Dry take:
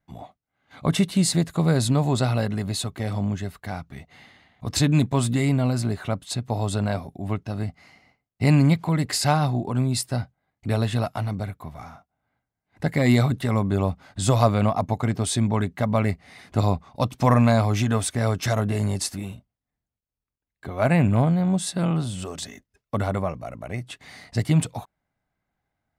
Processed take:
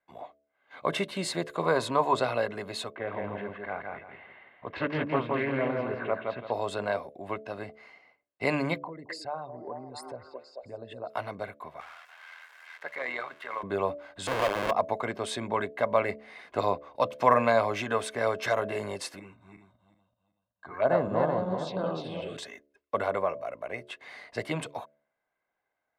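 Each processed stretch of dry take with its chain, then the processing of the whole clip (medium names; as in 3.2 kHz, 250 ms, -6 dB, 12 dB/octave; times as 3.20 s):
1.63–2.15 s: peaking EQ 1 kHz +10.5 dB 0.51 oct + band-stop 850 Hz, Q 16
2.95–6.52 s: low-pass 2.7 kHz 24 dB/octave + feedback delay 167 ms, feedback 28%, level -3.5 dB + loudspeaker Doppler distortion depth 0.36 ms
8.78–11.10 s: resonances exaggerated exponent 2 + repeats whose band climbs or falls 219 ms, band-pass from 400 Hz, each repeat 0.7 oct, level -6.5 dB + compression 3:1, threshold -32 dBFS
11.80–13.63 s: zero-crossing glitches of -22 dBFS + band-pass filter 1.5 kHz, Q 1.2 + AM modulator 82 Hz, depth 40%
14.27–14.71 s: bass shelf 270 Hz -5 dB + Schmitt trigger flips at -22.5 dBFS
19.19–22.37 s: backward echo that repeats 189 ms, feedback 51%, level -3 dB + touch-sensitive phaser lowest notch 390 Hz, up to 2.4 kHz, full sweep at -16.5 dBFS + distance through air 98 m
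whole clip: three-band isolator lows -23 dB, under 300 Hz, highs -14 dB, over 3.4 kHz; comb 1.9 ms, depth 32%; de-hum 72.46 Hz, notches 9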